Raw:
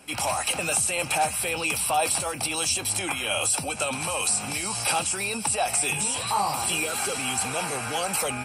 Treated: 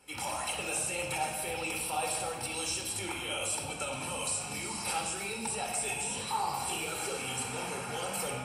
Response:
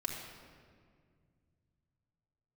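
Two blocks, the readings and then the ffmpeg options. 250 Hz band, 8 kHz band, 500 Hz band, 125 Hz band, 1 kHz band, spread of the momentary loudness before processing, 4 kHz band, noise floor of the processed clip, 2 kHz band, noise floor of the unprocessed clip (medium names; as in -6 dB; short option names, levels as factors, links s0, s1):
-7.0 dB, -9.5 dB, -7.5 dB, -6.5 dB, -8.0 dB, 4 LU, -8.5 dB, -39 dBFS, -8.5 dB, -34 dBFS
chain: -filter_complex "[0:a]flanger=delay=0.7:depth=4.7:regen=-56:speed=1.9:shape=triangular[s0];[1:a]atrim=start_sample=2205,asetrate=61740,aresample=44100[s1];[s0][s1]afir=irnorm=-1:irlink=0,volume=0.708"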